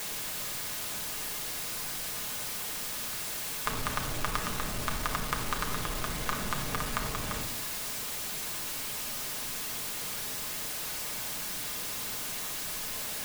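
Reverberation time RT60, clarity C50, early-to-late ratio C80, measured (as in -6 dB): 0.70 s, 8.0 dB, 11.5 dB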